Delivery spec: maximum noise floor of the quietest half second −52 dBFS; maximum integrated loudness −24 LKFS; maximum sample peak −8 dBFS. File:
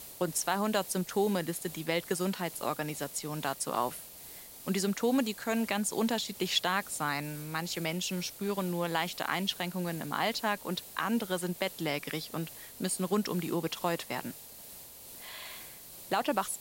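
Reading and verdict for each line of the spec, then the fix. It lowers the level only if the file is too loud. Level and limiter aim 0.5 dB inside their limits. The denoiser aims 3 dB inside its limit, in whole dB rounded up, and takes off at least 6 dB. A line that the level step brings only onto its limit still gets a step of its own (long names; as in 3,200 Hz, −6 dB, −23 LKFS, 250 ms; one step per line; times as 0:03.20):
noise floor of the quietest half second −49 dBFS: out of spec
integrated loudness −32.5 LKFS: in spec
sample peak −14.0 dBFS: in spec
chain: broadband denoise 6 dB, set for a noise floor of −49 dBFS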